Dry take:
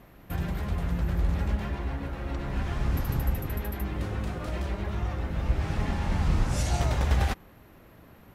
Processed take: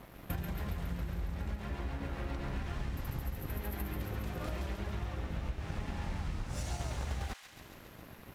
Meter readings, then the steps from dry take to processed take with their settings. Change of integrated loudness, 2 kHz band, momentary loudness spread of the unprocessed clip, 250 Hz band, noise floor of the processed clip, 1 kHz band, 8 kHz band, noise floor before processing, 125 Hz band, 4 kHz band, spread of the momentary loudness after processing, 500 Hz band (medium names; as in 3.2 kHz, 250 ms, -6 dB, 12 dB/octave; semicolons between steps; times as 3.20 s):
-9.5 dB, -7.5 dB, 6 LU, -8.5 dB, -54 dBFS, -9.0 dB, -8.0 dB, -53 dBFS, -9.5 dB, -7.5 dB, 4 LU, -8.0 dB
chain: compression 10:1, threshold -38 dBFS, peak gain reduction 19.5 dB; crossover distortion -56.5 dBFS; feedback echo behind a high-pass 138 ms, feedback 71%, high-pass 1.8 kHz, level -5.5 dB; trim +5 dB